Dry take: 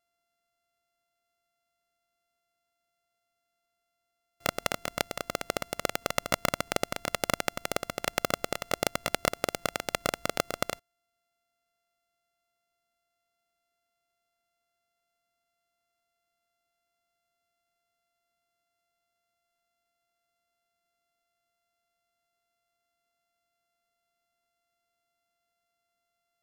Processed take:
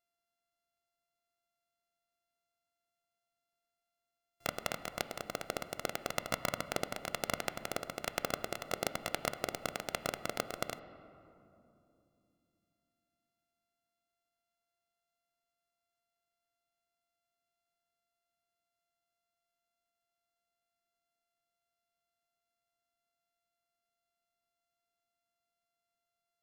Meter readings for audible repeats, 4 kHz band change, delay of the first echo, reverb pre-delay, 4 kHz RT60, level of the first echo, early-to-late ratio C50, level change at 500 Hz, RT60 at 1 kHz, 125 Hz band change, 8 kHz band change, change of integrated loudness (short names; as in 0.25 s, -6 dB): none, -7.0 dB, none, 5 ms, 1.5 s, none, 12.5 dB, -6.5 dB, 2.6 s, -6.5 dB, -7.0 dB, -6.5 dB